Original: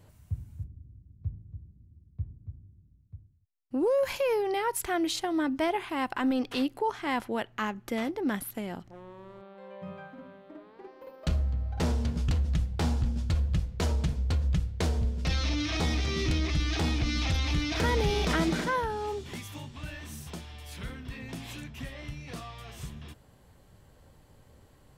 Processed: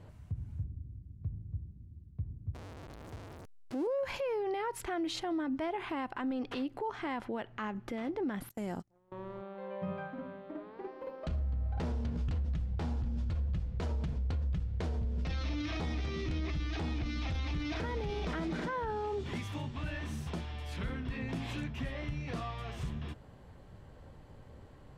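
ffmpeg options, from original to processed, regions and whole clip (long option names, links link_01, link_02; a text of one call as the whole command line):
ffmpeg -i in.wav -filter_complex "[0:a]asettb=1/sr,asplit=3[link_01][link_02][link_03];[link_01]atrim=end=2.544[link_04];[link_02]atrim=start=2.54:end=3.87,asetpts=PTS-STARTPTS,afade=type=in:duration=0.004:curve=qsin,afade=type=out:start_time=1.326:duration=0.004:curve=qsin,aeval=exprs='val(0)+0.5*0.01*sgn(val(0))':channel_layout=same,bass=frequency=250:gain=-10,treble=frequency=4000:gain=8[link_05];[link_03]atrim=start=3.866[link_06];[link_04][link_05]acrossfade=duration=0.004:curve1=hsin:curve2=qsin[link_07];[link_07][link_06]acrossfade=duration=0.004:curve1=qsin:curve2=hsin,asettb=1/sr,asplit=3[link_08][link_09][link_10];[link_08]atrim=end=8.494[link_11];[link_09]atrim=start=8.49:end=9.12,asetpts=PTS-STARTPTS,afade=type=in:duration=0.004:curve=qsin,afade=type=out:start_time=0.626:duration=0.004:curve=qsin,agate=range=-28dB:threshold=-43dB:ratio=16:release=100:detection=peak,highshelf=frequency=4800:width_type=q:width=1.5:gain=12[link_12];[link_10]atrim=start=9.116[link_13];[link_11][link_12]acrossfade=duration=0.004:curve1=hsin:curve2=qsin[link_14];[link_14][link_13]acrossfade=duration=0.004:curve1=qsin:curve2=hsin,aemphasis=mode=reproduction:type=75fm,acompressor=threshold=-32dB:ratio=4,alimiter=level_in=8dB:limit=-24dB:level=0:latency=1:release=46,volume=-8dB,volume=3.5dB" out.wav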